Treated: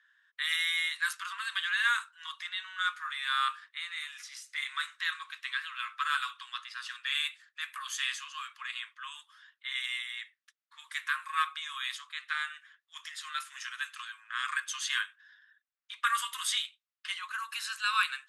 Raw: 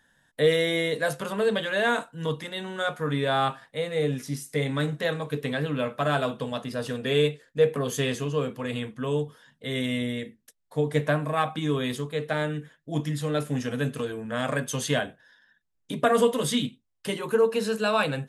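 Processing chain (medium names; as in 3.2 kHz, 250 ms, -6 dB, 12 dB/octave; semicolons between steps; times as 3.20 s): level-controlled noise filter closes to 3 kHz, open at -19.5 dBFS; steep high-pass 1.1 kHz 72 dB/octave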